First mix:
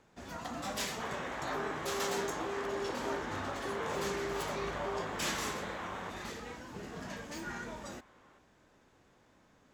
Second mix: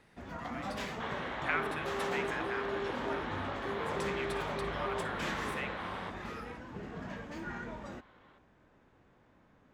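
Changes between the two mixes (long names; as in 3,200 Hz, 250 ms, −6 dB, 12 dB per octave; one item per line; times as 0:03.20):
speech: unmuted
first sound: add bass and treble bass +3 dB, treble −15 dB
second sound: remove high-frequency loss of the air 190 metres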